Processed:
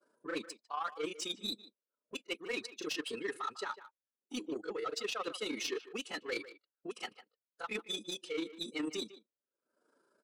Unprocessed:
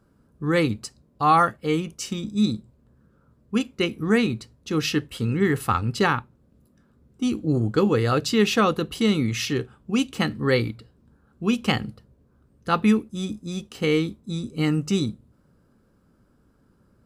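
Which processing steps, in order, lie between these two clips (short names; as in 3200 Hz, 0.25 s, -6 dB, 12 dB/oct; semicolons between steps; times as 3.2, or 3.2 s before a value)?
per-bin expansion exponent 1.5; elliptic low-pass 10000 Hz; expander -55 dBFS; HPF 420 Hz 24 dB/oct; dynamic EQ 1100 Hz, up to +6 dB, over -39 dBFS, Q 1.2; in parallel at -2.5 dB: upward compressor, threshold -28 dBFS; on the sum: limiter -11 dBFS, peak gain reduction 11 dB; reverse; compressor 20:1, threshold -33 dBFS, peak gain reduction 18.5 dB; reverse; soft clip -33.5 dBFS, distortion -13 dB; grains 0.102 s, grains 16/s, spray 35 ms, pitch spread up and down by 0 st; time stretch by phase-locked vocoder 0.6×; speakerphone echo 0.15 s, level -14 dB; gain +5 dB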